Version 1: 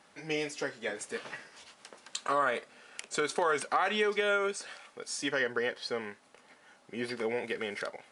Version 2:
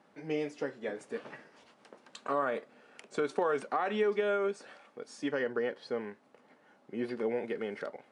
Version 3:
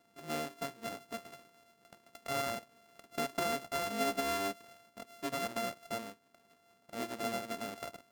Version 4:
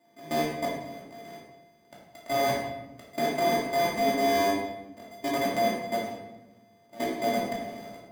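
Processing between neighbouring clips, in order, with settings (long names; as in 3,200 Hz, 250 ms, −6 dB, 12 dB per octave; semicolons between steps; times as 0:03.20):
high-pass filter 220 Hz 12 dB per octave; spectral tilt −4 dB per octave; level −3.5 dB
samples sorted by size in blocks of 64 samples; level −4.5 dB
notch comb filter 1,400 Hz; output level in coarse steps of 19 dB; rectangular room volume 430 cubic metres, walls mixed, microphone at 2.6 metres; level +6.5 dB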